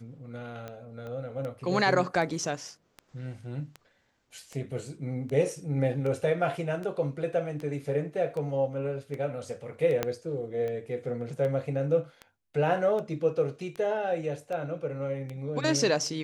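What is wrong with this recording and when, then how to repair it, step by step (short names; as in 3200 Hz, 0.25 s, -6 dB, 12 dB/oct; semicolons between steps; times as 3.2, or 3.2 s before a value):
tick 78 rpm -25 dBFS
1.07 pop -30 dBFS
10.03 pop -12 dBFS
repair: de-click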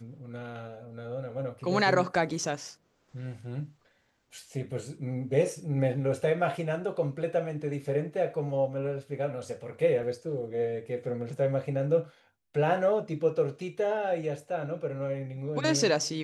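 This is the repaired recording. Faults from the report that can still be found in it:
1.07 pop
10.03 pop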